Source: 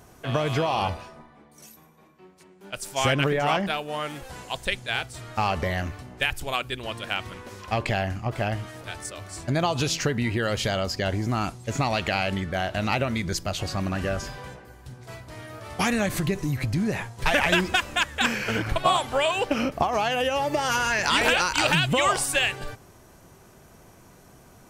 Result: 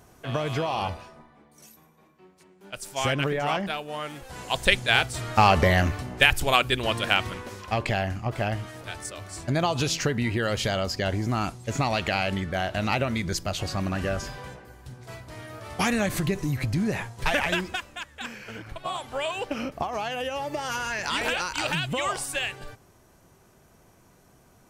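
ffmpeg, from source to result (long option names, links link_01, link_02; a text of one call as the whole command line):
ffmpeg -i in.wav -af "volume=14dB,afade=type=in:start_time=4.27:duration=0.41:silence=0.316228,afade=type=out:start_time=7.07:duration=0.59:silence=0.421697,afade=type=out:start_time=17.1:duration=0.83:silence=0.237137,afade=type=in:start_time=18.8:duration=0.45:silence=0.446684" out.wav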